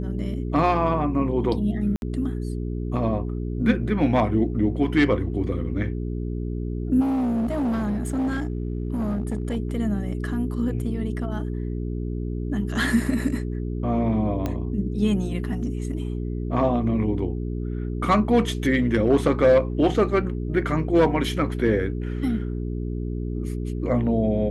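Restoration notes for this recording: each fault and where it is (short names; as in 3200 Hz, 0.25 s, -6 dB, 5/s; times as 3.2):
hum 60 Hz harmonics 7 -28 dBFS
1.96–2.02 gap 61 ms
7–9.57 clipped -21 dBFS
14.46 pop -14 dBFS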